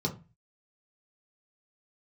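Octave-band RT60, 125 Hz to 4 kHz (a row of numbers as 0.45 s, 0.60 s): 0.50 s, 0.40 s, 0.30 s, 0.30 s, 0.30 s, 0.20 s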